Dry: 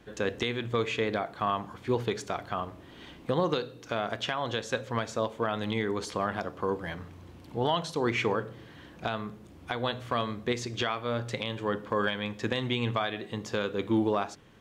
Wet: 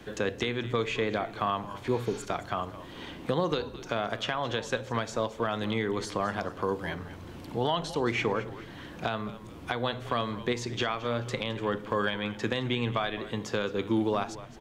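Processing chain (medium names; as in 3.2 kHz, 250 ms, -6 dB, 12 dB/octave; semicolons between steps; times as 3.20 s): spectral replace 1.94–2.22 s, 1–6.7 kHz; frequency-shifting echo 215 ms, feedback 32%, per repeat -99 Hz, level -17 dB; three bands compressed up and down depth 40%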